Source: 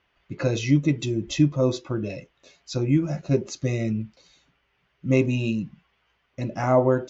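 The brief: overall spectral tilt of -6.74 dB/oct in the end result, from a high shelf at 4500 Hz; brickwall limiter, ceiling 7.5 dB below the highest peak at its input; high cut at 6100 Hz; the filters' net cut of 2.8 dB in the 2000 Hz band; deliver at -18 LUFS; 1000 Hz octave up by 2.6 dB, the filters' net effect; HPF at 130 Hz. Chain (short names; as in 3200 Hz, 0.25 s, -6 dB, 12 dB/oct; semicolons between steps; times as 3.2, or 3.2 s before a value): HPF 130 Hz; LPF 6100 Hz; bell 1000 Hz +4.5 dB; bell 2000 Hz -4 dB; high shelf 4500 Hz -3.5 dB; gain +9.5 dB; limiter -5 dBFS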